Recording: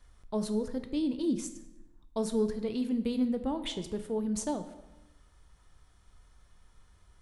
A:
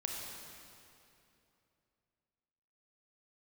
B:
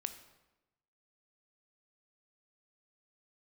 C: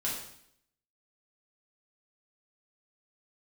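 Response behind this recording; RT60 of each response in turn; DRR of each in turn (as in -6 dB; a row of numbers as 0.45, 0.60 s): B; 2.8, 1.0, 0.70 s; -0.5, 9.0, -6.0 dB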